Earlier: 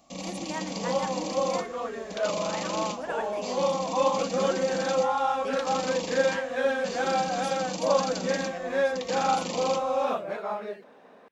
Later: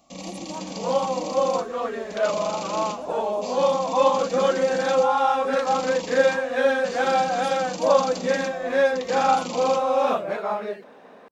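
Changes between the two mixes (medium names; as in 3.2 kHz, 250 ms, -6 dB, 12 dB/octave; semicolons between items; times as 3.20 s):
speech: add inverse Chebyshev band-stop 1.9–4.6 kHz; second sound +5.5 dB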